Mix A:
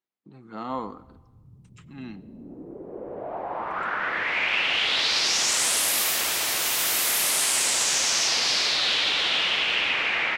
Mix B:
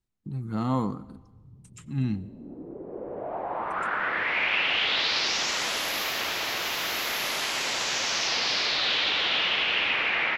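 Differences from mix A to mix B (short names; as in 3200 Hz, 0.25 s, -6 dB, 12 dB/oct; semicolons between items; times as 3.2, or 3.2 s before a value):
speech: remove BPF 390–4100 Hz; background: add running mean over 5 samples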